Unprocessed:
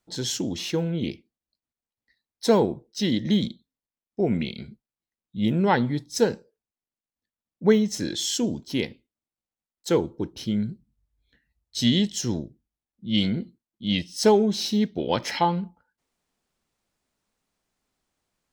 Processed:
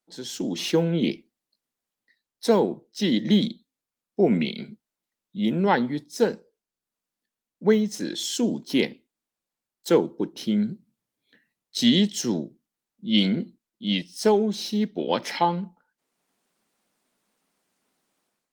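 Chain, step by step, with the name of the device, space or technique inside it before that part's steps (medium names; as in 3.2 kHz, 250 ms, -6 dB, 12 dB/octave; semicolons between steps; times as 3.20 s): high-pass 88 Hz 12 dB/octave; 5.79–6.25 s: de-esser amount 55%; video call (high-pass 170 Hz 24 dB/octave; level rider gain up to 14 dB; trim -6.5 dB; Opus 32 kbps 48 kHz)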